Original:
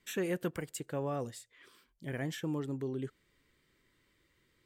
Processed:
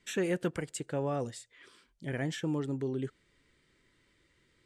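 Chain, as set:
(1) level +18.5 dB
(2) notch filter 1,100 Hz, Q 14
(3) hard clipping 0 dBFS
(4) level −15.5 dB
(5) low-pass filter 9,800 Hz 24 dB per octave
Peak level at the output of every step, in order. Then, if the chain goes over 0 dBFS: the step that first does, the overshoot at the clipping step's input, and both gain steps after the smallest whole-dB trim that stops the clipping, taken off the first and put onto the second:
−5.0, −4.5, −4.5, −20.0, −20.0 dBFS
no step passes full scale

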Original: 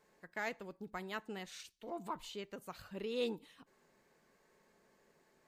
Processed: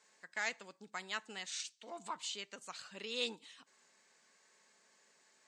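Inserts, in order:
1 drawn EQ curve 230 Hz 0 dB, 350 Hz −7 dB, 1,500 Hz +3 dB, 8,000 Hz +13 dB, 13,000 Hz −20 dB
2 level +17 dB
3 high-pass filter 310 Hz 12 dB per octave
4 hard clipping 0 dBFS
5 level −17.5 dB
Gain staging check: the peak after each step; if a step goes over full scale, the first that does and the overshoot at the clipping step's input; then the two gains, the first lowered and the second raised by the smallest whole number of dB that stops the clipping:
−20.0, −3.0, −4.0, −4.0, −21.5 dBFS
no step passes full scale

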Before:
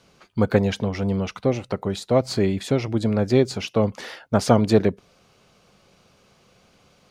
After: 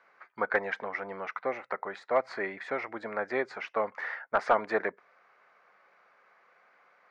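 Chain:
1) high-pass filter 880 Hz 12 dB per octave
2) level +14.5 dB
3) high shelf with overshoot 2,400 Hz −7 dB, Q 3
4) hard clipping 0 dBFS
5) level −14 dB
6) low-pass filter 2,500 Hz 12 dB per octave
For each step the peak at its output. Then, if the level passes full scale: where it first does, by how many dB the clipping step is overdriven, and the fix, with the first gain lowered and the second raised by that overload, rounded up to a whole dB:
−11.0, +3.5, +5.0, 0.0, −14.0, −13.5 dBFS
step 2, 5.0 dB
step 2 +9.5 dB, step 5 −9 dB

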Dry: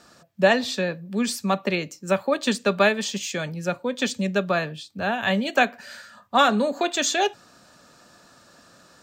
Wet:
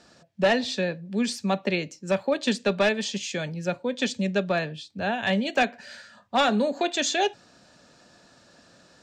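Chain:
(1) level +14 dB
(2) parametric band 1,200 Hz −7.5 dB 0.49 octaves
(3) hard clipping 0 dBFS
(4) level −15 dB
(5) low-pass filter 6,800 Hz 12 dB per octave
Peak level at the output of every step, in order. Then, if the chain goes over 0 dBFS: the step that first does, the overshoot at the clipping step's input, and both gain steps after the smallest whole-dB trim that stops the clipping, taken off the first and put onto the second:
+8.5, +8.0, 0.0, −15.0, −14.5 dBFS
step 1, 8.0 dB
step 1 +6 dB, step 4 −7 dB

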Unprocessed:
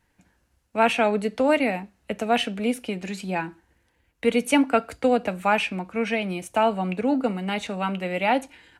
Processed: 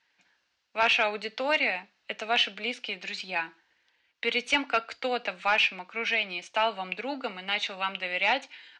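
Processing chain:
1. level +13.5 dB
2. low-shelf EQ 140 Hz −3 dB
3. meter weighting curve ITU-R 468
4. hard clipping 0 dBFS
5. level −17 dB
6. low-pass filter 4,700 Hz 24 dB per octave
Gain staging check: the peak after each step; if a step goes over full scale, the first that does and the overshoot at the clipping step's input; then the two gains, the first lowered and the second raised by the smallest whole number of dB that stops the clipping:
+7.0, +6.5, +9.5, 0.0, −17.0, −15.0 dBFS
step 1, 9.5 dB
step 1 +3.5 dB, step 5 −7 dB

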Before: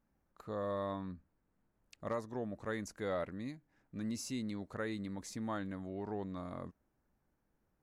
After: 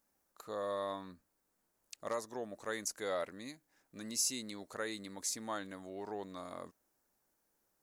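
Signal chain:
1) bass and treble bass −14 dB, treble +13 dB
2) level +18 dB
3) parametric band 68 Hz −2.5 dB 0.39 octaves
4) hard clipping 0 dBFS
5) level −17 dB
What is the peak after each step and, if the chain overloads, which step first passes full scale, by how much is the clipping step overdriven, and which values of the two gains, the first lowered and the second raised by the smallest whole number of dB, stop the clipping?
−21.5, −3.5, −3.5, −3.5, −20.5 dBFS
no step passes full scale

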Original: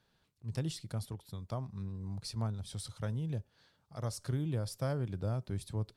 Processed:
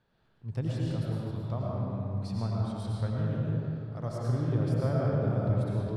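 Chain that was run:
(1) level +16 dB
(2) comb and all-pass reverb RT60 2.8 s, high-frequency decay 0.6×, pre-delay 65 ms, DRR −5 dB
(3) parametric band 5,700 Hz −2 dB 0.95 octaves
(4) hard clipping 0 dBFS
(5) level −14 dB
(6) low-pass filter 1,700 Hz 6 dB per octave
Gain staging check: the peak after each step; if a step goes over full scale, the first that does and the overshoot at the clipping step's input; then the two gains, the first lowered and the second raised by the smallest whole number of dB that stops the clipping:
−8.0, −1.5, −1.5, −1.5, −15.5, −15.5 dBFS
no step passes full scale

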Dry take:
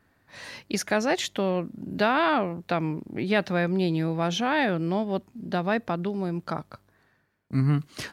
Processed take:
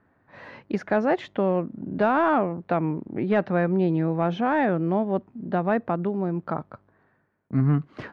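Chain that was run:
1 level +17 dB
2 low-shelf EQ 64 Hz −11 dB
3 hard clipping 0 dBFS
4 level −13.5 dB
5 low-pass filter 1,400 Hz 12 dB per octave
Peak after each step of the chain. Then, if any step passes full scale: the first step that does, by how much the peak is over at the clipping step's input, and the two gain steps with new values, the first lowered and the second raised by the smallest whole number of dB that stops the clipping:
+6.5, +5.5, 0.0, −13.5, −13.0 dBFS
step 1, 5.5 dB
step 1 +11 dB, step 4 −7.5 dB

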